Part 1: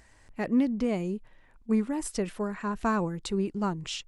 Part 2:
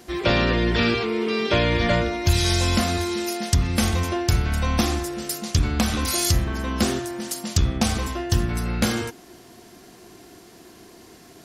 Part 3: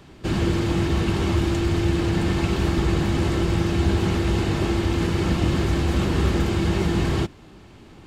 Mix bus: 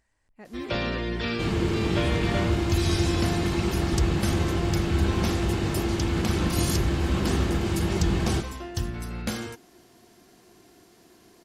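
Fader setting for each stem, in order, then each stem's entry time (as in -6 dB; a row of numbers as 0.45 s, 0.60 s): -15.0 dB, -8.5 dB, -4.0 dB; 0.00 s, 0.45 s, 1.15 s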